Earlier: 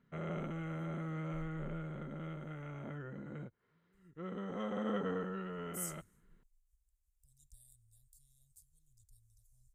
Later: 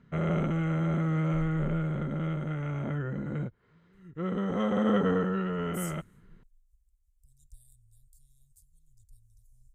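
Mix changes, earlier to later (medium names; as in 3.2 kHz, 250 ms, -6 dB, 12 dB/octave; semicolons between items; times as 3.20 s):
background +9.5 dB; master: add bass shelf 120 Hz +10.5 dB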